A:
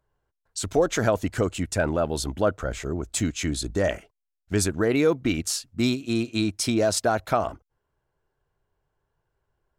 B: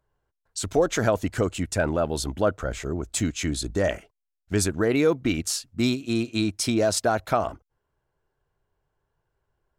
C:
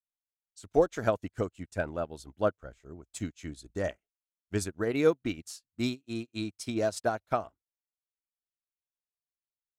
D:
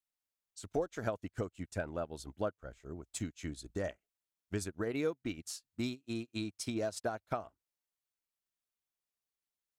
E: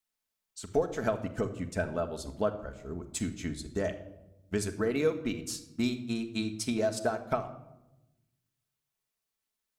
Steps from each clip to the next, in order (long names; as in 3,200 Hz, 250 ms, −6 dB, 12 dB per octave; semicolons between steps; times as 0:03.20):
no processing that can be heard
expander for the loud parts 2.5 to 1, over −42 dBFS; level −1 dB
downward compressor 2.5 to 1, threshold −38 dBFS, peak gain reduction 13.5 dB; level +1.5 dB
convolution reverb RT60 0.95 s, pre-delay 5 ms, DRR 6 dB; level +5 dB